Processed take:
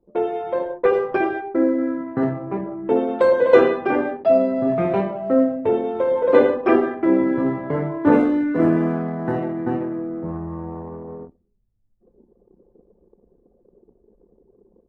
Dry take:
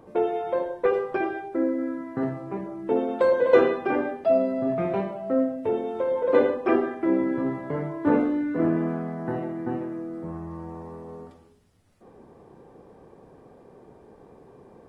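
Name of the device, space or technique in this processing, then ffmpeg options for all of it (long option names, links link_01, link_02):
voice memo with heavy noise removal: -filter_complex "[0:a]asettb=1/sr,asplit=3[link_01][link_02][link_03];[link_01]atrim=end=8.124[link_04];[link_02]atrim=start=8.12:end=9.82,asetpts=PTS-STARTPTS,afade=type=in:duration=0.004:curve=qsin,afade=type=out:start_time=1.696:duration=0.004:curve=qsin,aemphasis=mode=production:type=cd[link_05];[link_03]atrim=start=9.816[link_06];[link_04][link_05]acrossfade=duration=0.004:curve1=hsin:curve2=qsin[link_07];[link_07][link_06]acrossfade=duration=0.004:curve1=qsin:curve2=hsin,anlmdn=0.631,dynaudnorm=framelen=510:gausssize=3:maxgain=5dB,volume=1.5dB"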